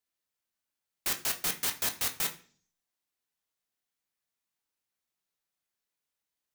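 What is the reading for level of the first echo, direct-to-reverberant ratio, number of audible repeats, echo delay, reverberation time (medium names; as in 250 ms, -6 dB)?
no echo, 4.0 dB, no echo, no echo, 0.45 s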